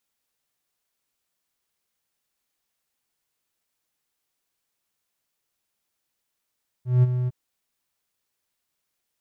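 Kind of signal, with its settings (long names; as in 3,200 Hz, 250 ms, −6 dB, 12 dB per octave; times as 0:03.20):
note with an ADSR envelope triangle 125 Hz, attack 180 ms, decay 28 ms, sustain −9.5 dB, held 0.43 s, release 27 ms −10 dBFS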